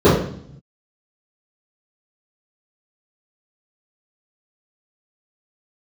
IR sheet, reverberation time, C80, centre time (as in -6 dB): 0.60 s, 7.0 dB, 52 ms